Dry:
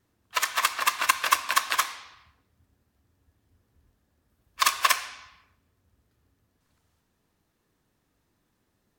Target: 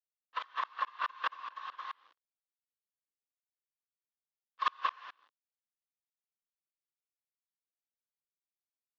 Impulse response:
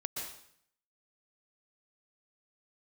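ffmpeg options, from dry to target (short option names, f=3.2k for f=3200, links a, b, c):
-af "aeval=exprs='(tanh(11.2*val(0)+0.2)-tanh(0.2))/11.2':c=same,aresample=16000,aeval=exprs='val(0)*gte(abs(val(0)),0.00562)':c=same,aresample=44100,highpass=f=350:w=0.5412,highpass=f=350:w=1.3066,equalizer=f=390:t=q:w=4:g=-8,equalizer=f=670:t=q:w=4:g=-7,equalizer=f=1.1k:t=q:w=4:g=7,equalizer=f=2.3k:t=q:w=4:g=-10,lowpass=f=3.3k:w=0.5412,lowpass=f=3.3k:w=1.3066,aeval=exprs='val(0)*pow(10,-33*if(lt(mod(-4.7*n/s,1),2*abs(-4.7)/1000),1-mod(-4.7*n/s,1)/(2*abs(-4.7)/1000),(mod(-4.7*n/s,1)-2*abs(-4.7)/1000)/(1-2*abs(-4.7)/1000))/20)':c=same"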